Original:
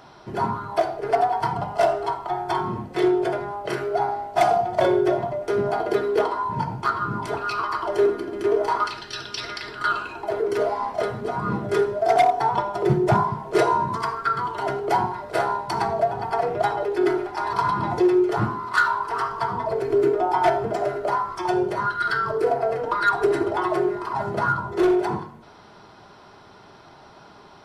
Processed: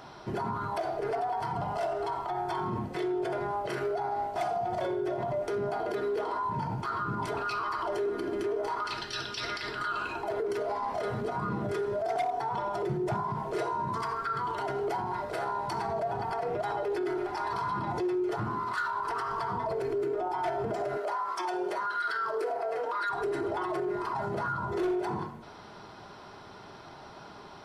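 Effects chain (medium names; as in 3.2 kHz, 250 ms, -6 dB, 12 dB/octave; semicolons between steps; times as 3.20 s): 20.97–23.10 s: high-pass 450 Hz 12 dB/octave; compression 3:1, threshold -23 dBFS, peak gain reduction 7.5 dB; peak limiter -24.5 dBFS, peak gain reduction 11 dB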